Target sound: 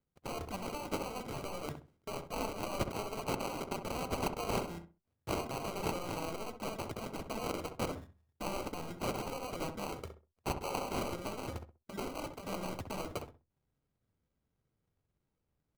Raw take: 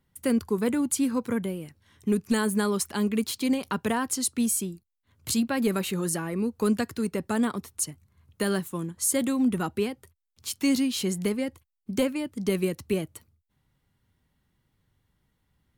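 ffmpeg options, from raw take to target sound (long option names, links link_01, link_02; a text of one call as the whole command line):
ffmpeg -i in.wav -filter_complex "[0:a]acrossover=split=690[link_01][link_02];[link_01]asoftclip=type=tanh:threshold=-32dB[link_03];[link_03][link_02]amix=inputs=2:normalize=0,equalizer=frequency=500:width_type=o:width=1:gain=8,equalizer=frequency=1000:width_type=o:width=1:gain=-5,equalizer=frequency=2000:width_type=o:width=1:gain=-7,equalizer=frequency=4000:width_type=o:width=1:gain=10,equalizer=frequency=8000:width_type=o:width=1:gain=-12,areverse,acompressor=threshold=-42dB:ratio=6,areverse,acrusher=bits=3:mode=log:mix=0:aa=0.000001,afftfilt=real='re*lt(hypot(re,im),0.0355)':imag='im*lt(hypot(re,im),0.0355)':win_size=1024:overlap=0.75,bandreject=frequency=375.3:width_type=h:width=4,bandreject=frequency=750.6:width_type=h:width=4,bandreject=frequency=1125.9:width_type=h:width=4,acrusher=samples=25:mix=1:aa=0.000001,agate=range=-23dB:threshold=-58dB:ratio=16:detection=peak,asplit=2[link_04][link_05];[link_05]adelay=65,lowpass=frequency=1300:poles=1,volume=-7dB,asplit=2[link_06][link_07];[link_07]adelay=65,lowpass=frequency=1300:poles=1,volume=0.26,asplit=2[link_08][link_09];[link_09]adelay=65,lowpass=frequency=1300:poles=1,volume=0.26[link_10];[link_04][link_06][link_08][link_10]amix=inputs=4:normalize=0,volume=10.5dB" out.wav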